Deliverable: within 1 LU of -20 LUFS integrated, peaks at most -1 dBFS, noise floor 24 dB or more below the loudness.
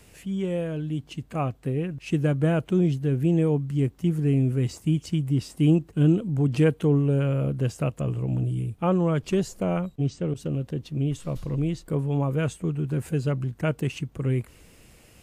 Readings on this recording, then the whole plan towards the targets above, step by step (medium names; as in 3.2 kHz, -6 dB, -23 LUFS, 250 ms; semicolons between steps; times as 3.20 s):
loudness -25.5 LUFS; peak level -10.0 dBFS; loudness target -20.0 LUFS
-> trim +5.5 dB